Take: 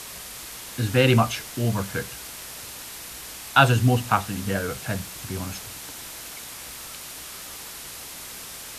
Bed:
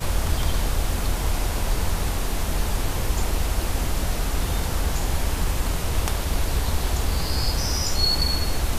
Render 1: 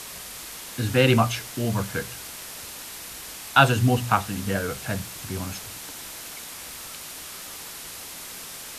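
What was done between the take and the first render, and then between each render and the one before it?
hum removal 60 Hz, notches 2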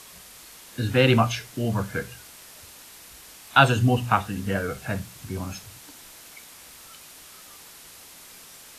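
noise reduction from a noise print 8 dB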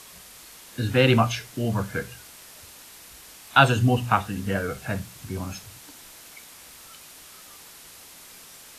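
no processing that can be heard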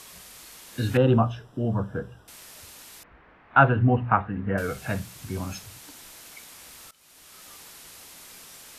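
0:00.97–0:02.28: moving average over 20 samples
0:03.03–0:04.58: low-pass filter 1,900 Hz 24 dB per octave
0:06.91–0:07.49: fade in, from −21.5 dB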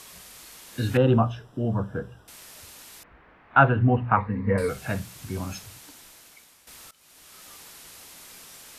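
0:04.16–0:04.69: EQ curve with evenly spaced ripples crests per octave 0.94, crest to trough 15 dB
0:05.65–0:06.67: fade out, to −12.5 dB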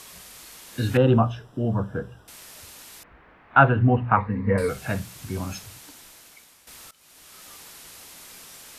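level +1.5 dB

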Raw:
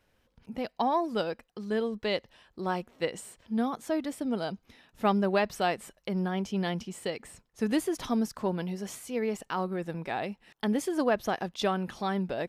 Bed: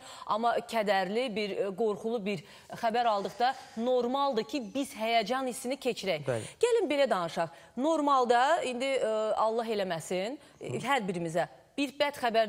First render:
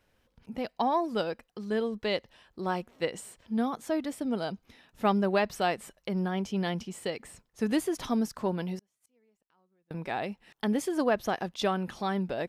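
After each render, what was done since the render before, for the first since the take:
0:08.78–0:09.91: gate with flip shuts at −33 dBFS, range −39 dB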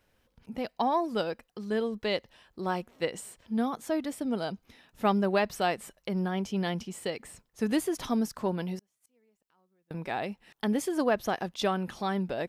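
high-shelf EQ 10,000 Hz +4 dB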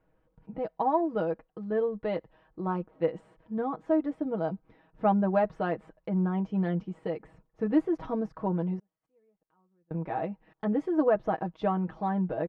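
low-pass filter 1,100 Hz 12 dB per octave
comb filter 6.3 ms, depth 75%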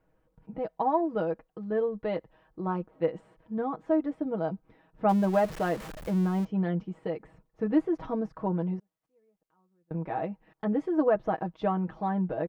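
0:05.09–0:06.45: converter with a step at zero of −36.5 dBFS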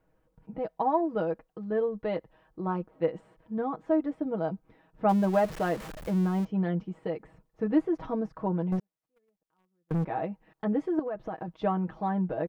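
0:08.72–0:10.05: leveller curve on the samples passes 3
0:10.99–0:11.48: downward compressor 4 to 1, threshold −32 dBFS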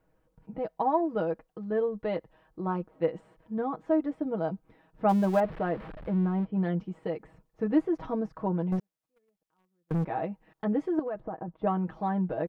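0:05.40–0:06.57: high-frequency loss of the air 440 metres
0:11.20–0:11.67: low-pass filter 1,200 Hz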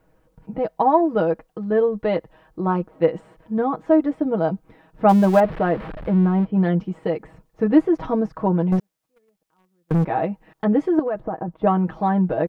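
level +9.5 dB

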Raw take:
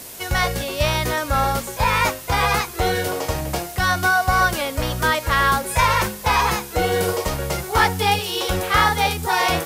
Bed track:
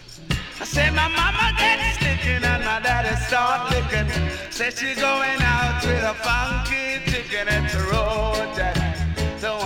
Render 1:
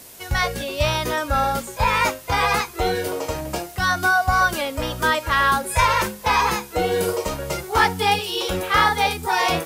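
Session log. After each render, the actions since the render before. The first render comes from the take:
noise reduction from a noise print 6 dB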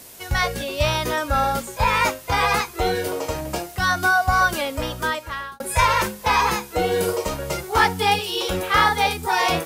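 0:04.76–0:05.60: fade out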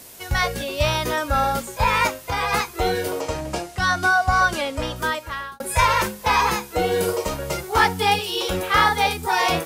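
0:02.07–0:02.53: downward compressor 1.5 to 1, threshold −26 dBFS
0:03.21–0:04.96: low-pass filter 9,200 Hz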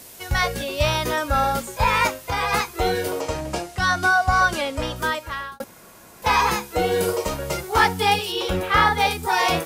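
0:05.64–0:06.22: fill with room tone
0:08.32–0:09.00: bass and treble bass +3 dB, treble −6 dB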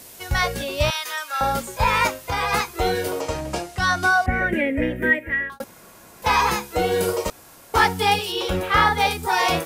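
0:00.90–0:01.41: high-pass filter 1,400 Hz
0:04.26–0:05.50: drawn EQ curve 150 Hz 0 dB, 220 Hz +11 dB, 480 Hz +6 dB, 1,200 Hz −19 dB, 1,900 Hz +14 dB, 4,600 Hz −28 dB, 13,000 Hz −9 dB
0:07.30–0:07.74: fill with room tone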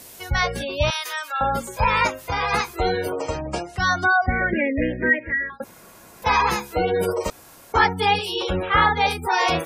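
gate on every frequency bin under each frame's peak −25 dB strong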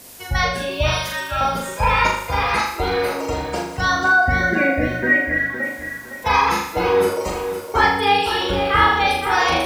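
flutter between parallel walls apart 6.8 metres, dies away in 0.67 s
feedback echo at a low word length 510 ms, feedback 35%, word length 7 bits, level −9 dB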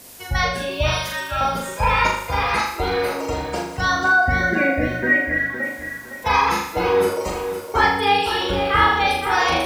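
level −1 dB

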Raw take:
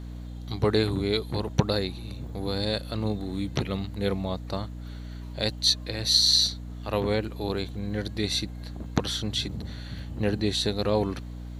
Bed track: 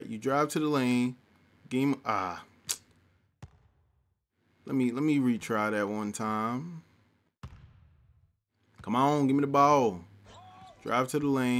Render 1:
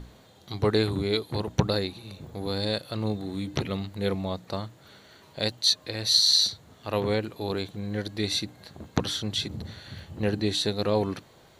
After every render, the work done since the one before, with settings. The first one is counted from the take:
mains-hum notches 60/120/180/240/300 Hz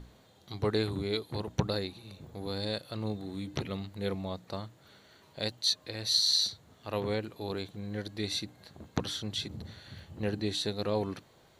level −6 dB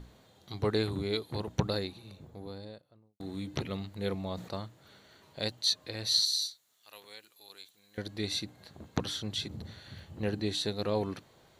0:01.78–0:03.20: fade out and dull
0:04.17–0:04.63: level that may fall only so fast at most 100 dB per second
0:06.25–0:07.98: first difference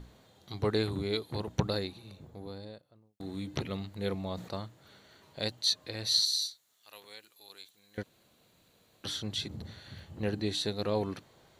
0:08.03–0:09.04: fill with room tone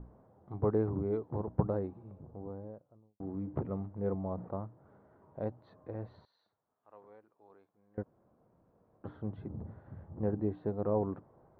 low-pass filter 1,100 Hz 24 dB per octave

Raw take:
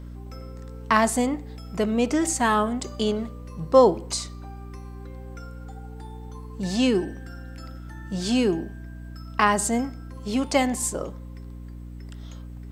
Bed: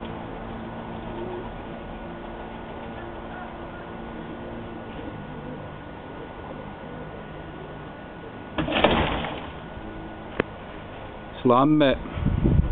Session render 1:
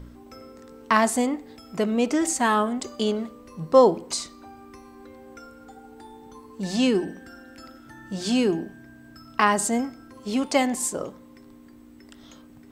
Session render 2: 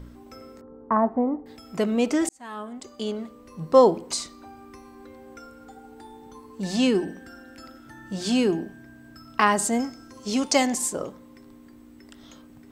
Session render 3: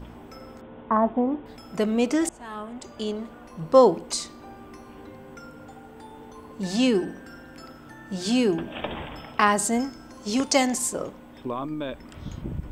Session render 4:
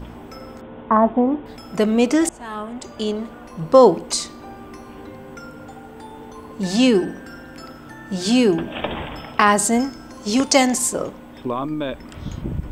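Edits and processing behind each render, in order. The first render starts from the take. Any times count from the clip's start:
hum removal 60 Hz, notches 3
0:00.61–0:01.46: low-pass filter 1,100 Hz 24 dB per octave; 0:02.29–0:03.73: fade in; 0:09.80–0:10.78: parametric band 6,000 Hz +11 dB 0.81 octaves
mix in bed −13 dB
level +6 dB; brickwall limiter −2 dBFS, peak gain reduction 2.5 dB

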